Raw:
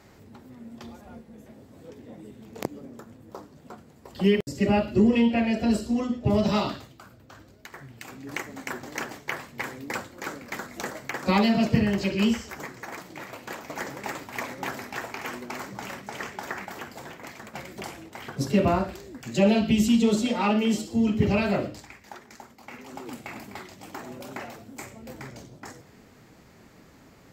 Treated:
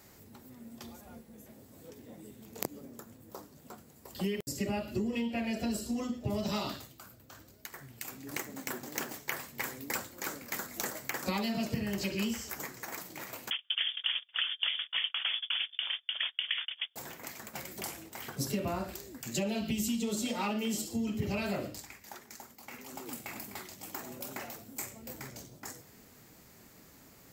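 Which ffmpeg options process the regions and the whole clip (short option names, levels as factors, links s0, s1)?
-filter_complex "[0:a]asettb=1/sr,asplit=3[s0][s1][s2];[s0]atrim=end=8.314[s3];[s1]atrim=start=8.31:end=9.14,asetpts=PTS-STARTPTS,afade=t=in:d=0.004:c=qsin,afade=t=out:st=0.826:d=0.004:c=qsin,aeval=exprs='if(lt(val(0),0),0.447*val(0),val(0))':c=same,highpass=140,lowshelf=f=450:g=7.5[s4];[s2]atrim=start=9.136[s5];[s3][s4]acrossfade=d=0.004:c1=hsin:c2=qsin[s6];[s6][s5]acrossfade=d=0.004:c1=qsin:c2=hsin,asettb=1/sr,asplit=3[s7][s8][s9];[s7]atrim=end=13.504[s10];[s8]atrim=start=13.5:end=16.96,asetpts=PTS-STARTPTS,afade=t=in:d=0.004:c=qsin,afade=t=out:st=3.456:d=0.004:c=qsin,agate=range=0.0224:threshold=0.0126:ratio=16:release=100:detection=peak,equalizer=f=540:w=0.77:g=13,lowpass=f=3100:t=q:w=0.5098,lowpass=f=3100:t=q:w=0.6013,lowpass=f=3100:t=q:w=0.9,lowpass=f=3100:t=q:w=2.563,afreqshift=-3700[s11];[s9]atrim=start=16.956[s12];[s10][s11]acrossfade=d=0.004:c1=hsin:c2=qsin[s13];[s13][s12]acrossfade=d=0.004:c1=qsin:c2=hsin,highshelf=f=8200:g=5,acompressor=threshold=0.0631:ratio=6,aemphasis=mode=production:type=50kf,volume=0.501"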